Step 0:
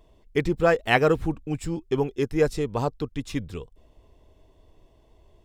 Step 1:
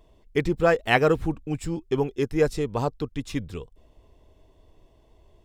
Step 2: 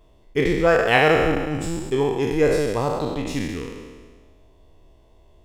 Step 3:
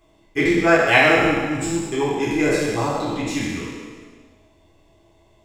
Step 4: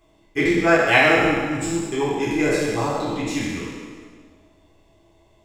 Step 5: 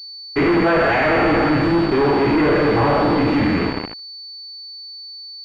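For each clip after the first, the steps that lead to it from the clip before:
nothing audible
spectral trails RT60 1.50 s
reverb RT60 1.1 s, pre-delay 3 ms, DRR -4 dB; gain -1.5 dB
analogue delay 65 ms, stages 1024, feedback 82%, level -21.5 dB; gain -1 dB
fuzz box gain 35 dB, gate -33 dBFS; pulse-width modulation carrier 4500 Hz

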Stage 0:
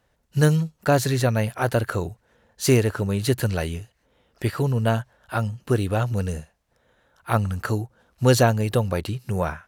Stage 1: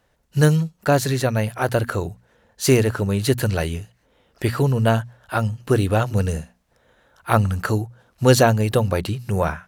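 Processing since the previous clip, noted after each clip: notches 60/120/180/240 Hz; vocal rider within 4 dB 2 s; gain +2 dB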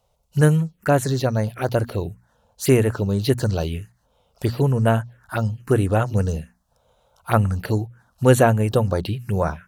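envelope phaser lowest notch 290 Hz, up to 4900 Hz, full sweep at -14 dBFS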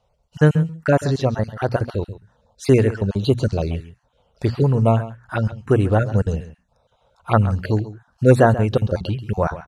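random spectral dropouts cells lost 22%; air absorption 81 m; echo 0.135 s -15 dB; gain +2 dB

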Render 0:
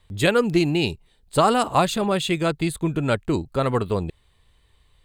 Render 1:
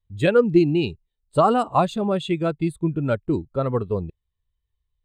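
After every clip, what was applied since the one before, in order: spectral expander 1.5:1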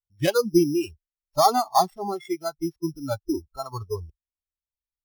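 sample sorter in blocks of 8 samples; small resonant body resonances 800/3200 Hz, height 8 dB; spectral noise reduction 23 dB; gain -2 dB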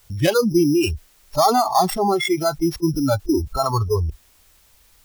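fast leveller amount 70%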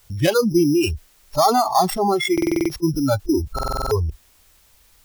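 stuck buffer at 2.33/3.54, samples 2048, times 7

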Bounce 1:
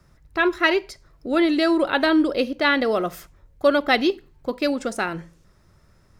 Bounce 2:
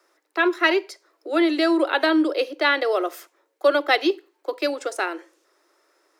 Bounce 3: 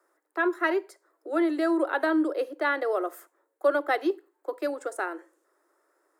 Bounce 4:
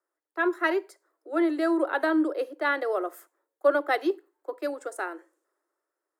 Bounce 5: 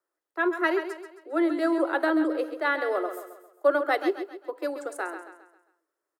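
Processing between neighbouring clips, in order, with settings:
steep high-pass 300 Hz 96 dB/oct
band shelf 3700 Hz -12 dB; gain -5 dB
three-band expander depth 40%
feedback echo 0.134 s, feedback 42%, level -9.5 dB

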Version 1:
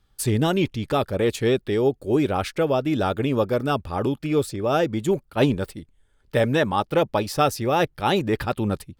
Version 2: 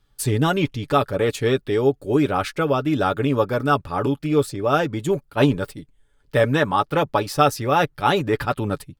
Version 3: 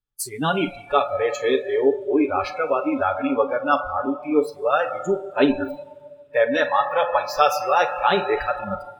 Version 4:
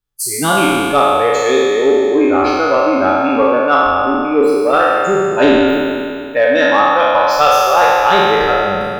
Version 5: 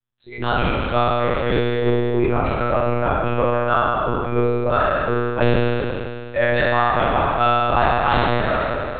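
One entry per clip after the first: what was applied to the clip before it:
comb 7 ms, depth 45%; dynamic EQ 1300 Hz, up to +6 dB, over -37 dBFS, Q 1.7
Schroeder reverb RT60 2.8 s, combs from 33 ms, DRR 4.5 dB; spectral noise reduction 25 dB
spectral trails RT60 2.38 s; soft clip -5.5 dBFS, distortion -22 dB; gain +4.5 dB
monotone LPC vocoder at 8 kHz 120 Hz; gain -6.5 dB

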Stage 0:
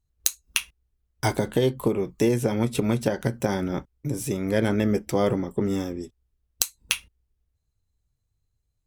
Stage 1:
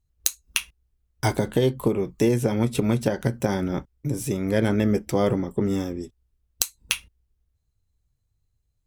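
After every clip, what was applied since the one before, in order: low shelf 220 Hz +3 dB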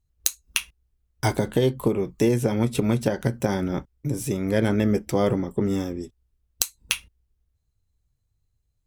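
nothing audible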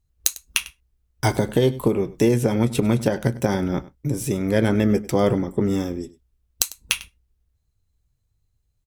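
echo 99 ms -19 dB; gain +2.5 dB

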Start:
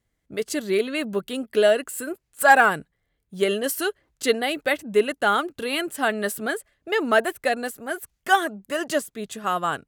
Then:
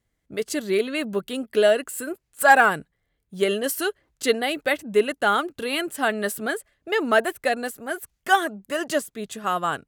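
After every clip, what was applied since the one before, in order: nothing audible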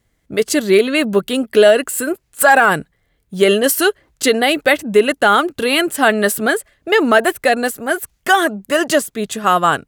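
maximiser +12 dB; gain -1 dB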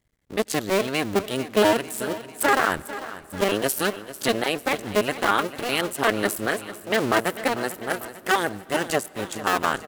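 cycle switcher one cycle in 2, muted; feedback echo 0.446 s, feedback 59%, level -14.5 dB; on a send at -23 dB: reverb RT60 4.9 s, pre-delay 78 ms; on the sum: gain -6.5 dB

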